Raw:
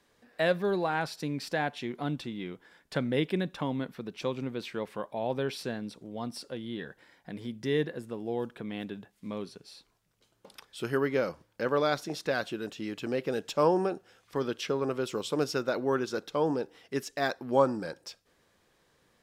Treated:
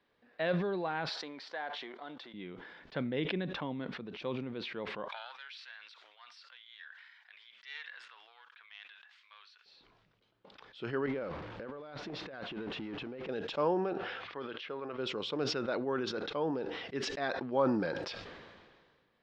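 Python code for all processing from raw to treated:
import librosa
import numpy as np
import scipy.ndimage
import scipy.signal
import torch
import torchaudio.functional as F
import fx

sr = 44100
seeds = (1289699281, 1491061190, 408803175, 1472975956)

y = fx.chain(x, sr, fx.halfwave_gain(db=-3.0),
    fx.highpass(hz=580.0, slope=12),
    fx.peak_eq(hz=2600.0, db=-8.5, octaves=0.29), at=(1.09, 2.34))
y = fx.chain(y, sr, fx.self_delay(depth_ms=0.11),
    fx.highpass(hz=1300.0, slope=24), at=(5.08, 9.66))
y = fx.chain(y, sr, fx.zero_step(step_db=-36.5),
    fx.over_compress(threshold_db=-36.0, ratio=-1.0),
    fx.high_shelf(hz=3300.0, db=-10.5), at=(11.06, 13.29))
y = fx.chain(y, sr, fx.lowpass(hz=3600.0, slope=12),
    fx.low_shelf(hz=450.0, db=-11.0), at=(13.93, 14.98))
y = scipy.signal.sosfilt(scipy.signal.butter(4, 4000.0, 'lowpass', fs=sr, output='sos'), y)
y = fx.low_shelf(y, sr, hz=120.0, db=-6.0)
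y = fx.sustainer(y, sr, db_per_s=33.0)
y = F.gain(torch.from_numpy(y), -6.0).numpy()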